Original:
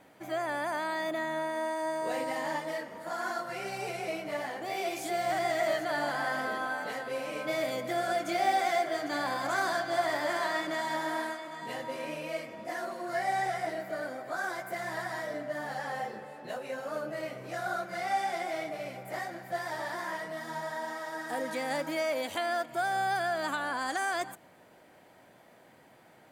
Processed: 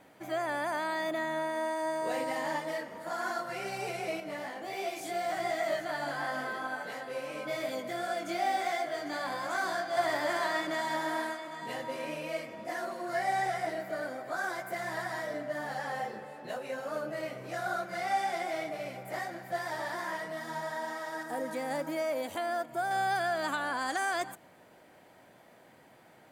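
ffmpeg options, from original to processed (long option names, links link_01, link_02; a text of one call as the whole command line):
ffmpeg -i in.wav -filter_complex "[0:a]asettb=1/sr,asplit=3[link_01][link_02][link_03];[link_01]atrim=end=4.204[link_04];[link_02]atrim=start=4.2:end=9.97,asetpts=PTS-STARTPTS,afade=type=in:duration=0.004:curve=qsin,afade=type=out:start_time=5.766:duration=0.004:curve=qsin,flanger=delay=19:depth=2.2:speed=2.8[link_05];[link_03]atrim=start=9.966[link_06];[link_04][link_05]acrossfade=duration=0.004:curve1=hsin:curve2=qsin[link_07];[link_07][link_06]acrossfade=duration=0.004:curve1=qsin:curve2=hsin,asettb=1/sr,asplit=3[link_08][link_09][link_10];[link_08]atrim=end=21.234[link_11];[link_09]atrim=start=21.23:end=22.91,asetpts=PTS-STARTPTS,afade=type=in:duration=0.004:curve=qsin,afade=type=out:start_time=1.676:duration=0.004:curve=qsin,equalizer=frequency=3400:width_type=o:width=2.5:gain=-7[link_12];[link_10]atrim=start=22.906[link_13];[link_11][link_12]acrossfade=duration=0.004:curve1=hsin:curve2=qsin[link_14];[link_14][link_13]acrossfade=duration=0.004:curve1=qsin:curve2=hsin" out.wav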